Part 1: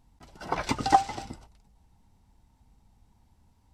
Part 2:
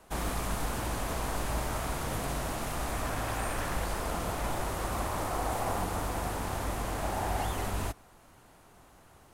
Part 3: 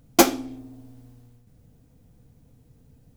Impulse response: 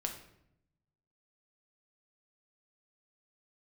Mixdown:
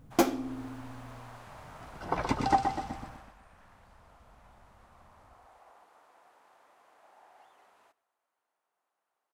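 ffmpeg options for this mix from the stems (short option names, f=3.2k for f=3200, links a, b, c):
-filter_complex "[0:a]alimiter=limit=-11dB:level=0:latency=1:release=396,adelay=1600,volume=-0.5dB,asplit=2[a][b];[b]volume=-6dB[c];[1:a]acrossover=split=6700[d][e];[e]acompressor=threshold=-51dB:ratio=4:attack=1:release=60[f];[d][f]amix=inputs=2:normalize=0,highpass=690,volume=-10dB,afade=t=out:st=3:d=0.34:silence=0.266073,asplit=2[g][h];[h]volume=-22.5dB[i];[2:a]volume=1.5dB[j];[c][i]amix=inputs=2:normalize=0,aecho=0:1:124|248|372|496|620|744:1|0.44|0.194|0.0852|0.0375|0.0165[k];[a][g][j][k]amix=inputs=4:normalize=0,highshelf=f=2.4k:g=-9,alimiter=limit=-11.5dB:level=0:latency=1:release=415"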